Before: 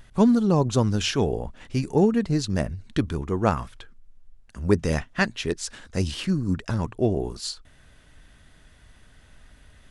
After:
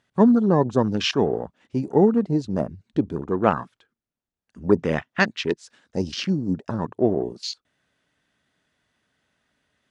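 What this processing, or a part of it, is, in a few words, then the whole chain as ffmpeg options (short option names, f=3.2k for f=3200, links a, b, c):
over-cleaned archive recording: -filter_complex "[0:a]highpass=180,lowpass=8k,afwtdn=0.0178,asettb=1/sr,asplit=3[a][b][c];[a]atrim=end=5.964[d];[b]atrim=start=5.96:end=6.59,asetpts=PTS-STARTPTS,afade=t=in:d=0.004:c=qsin,afade=t=out:st=0.626:d=0.004:c=qsin,equalizer=f=5.4k:t=o:w=0.56:g=8[e];[c]atrim=start=6.586[f];[d][e]acrossfade=d=0.004:c1=hsin:c2=qsin[g];[g][f]acrossfade=d=0.004:c1=qsin:c2=hsin,volume=3.5dB"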